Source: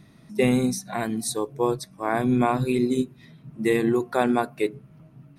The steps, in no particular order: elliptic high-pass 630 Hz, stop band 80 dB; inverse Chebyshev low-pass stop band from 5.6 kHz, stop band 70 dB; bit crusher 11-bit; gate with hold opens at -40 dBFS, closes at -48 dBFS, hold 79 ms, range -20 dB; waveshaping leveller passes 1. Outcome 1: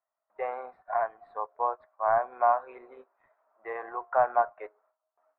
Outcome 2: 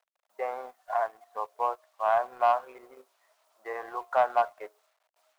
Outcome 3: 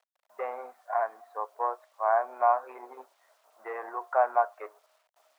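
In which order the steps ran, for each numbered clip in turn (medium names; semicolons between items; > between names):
bit crusher > gate with hold > elliptic high-pass > waveshaping leveller > inverse Chebyshev low-pass; gate with hold > inverse Chebyshev low-pass > bit crusher > elliptic high-pass > waveshaping leveller; waveshaping leveller > inverse Chebyshev low-pass > gate with hold > bit crusher > elliptic high-pass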